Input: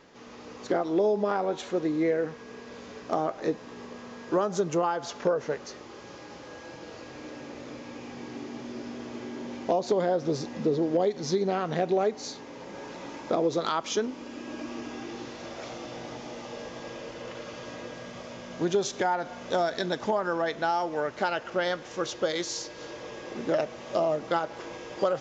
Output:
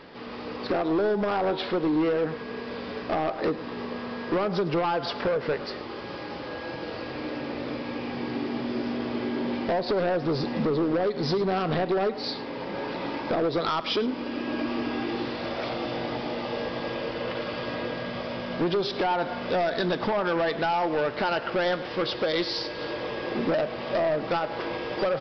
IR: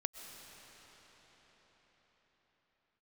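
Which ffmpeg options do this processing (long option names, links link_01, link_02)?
-filter_complex "[0:a]acompressor=threshold=-27dB:ratio=6,aresample=11025,asoftclip=type=hard:threshold=-30dB,aresample=44100,asplit=2[link_01][link_02];[link_02]adelay=105,volume=-16dB,highshelf=frequency=4000:gain=-2.36[link_03];[link_01][link_03]amix=inputs=2:normalize=0,volume=8.5dB"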